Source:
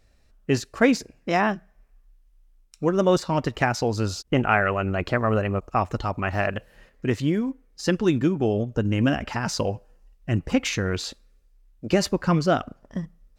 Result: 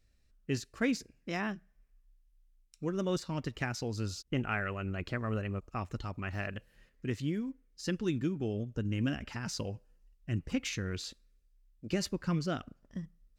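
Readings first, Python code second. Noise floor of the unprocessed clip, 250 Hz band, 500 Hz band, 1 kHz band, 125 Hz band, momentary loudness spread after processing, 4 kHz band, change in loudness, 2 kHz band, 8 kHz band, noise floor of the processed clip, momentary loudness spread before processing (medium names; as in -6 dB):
-60 dBFS, -10.5 dB, -14.5 dB, -16.5 dB, -9.5 dB, 9 LU, -9.5 dB, -12.0 dB, -12.0 dB, -9.0 dB, -69 dBFS, 10 LU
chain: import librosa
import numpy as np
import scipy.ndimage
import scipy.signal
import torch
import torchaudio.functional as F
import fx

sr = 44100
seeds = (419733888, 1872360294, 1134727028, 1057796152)

y = fx.peak_eq(x, sr, hz=760.0, db=-9.5, octaves=1.6)
y = F.gain(torch.from_numpy(y), -9.0).numpy()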